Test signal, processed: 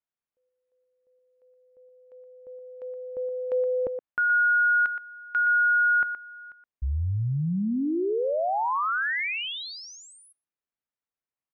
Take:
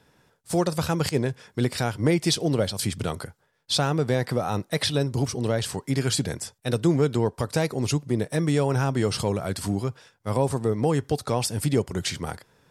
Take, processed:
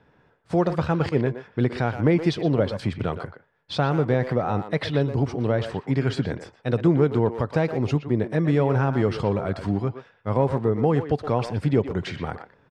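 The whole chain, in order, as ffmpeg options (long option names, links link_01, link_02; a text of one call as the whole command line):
ffmpeg -i in.wav -filter_complex "[0:a]lowpass=2200,asplit=2[link_01][link_02];[link_02]adelay=120,highpass=300,lowpass=3400,asoftclip=type=hard:threshold=-19dB,volume=-9dB[link_03];[link_01][link_03]amix=inputs=2:normalize=0,volume=2dB" out.wav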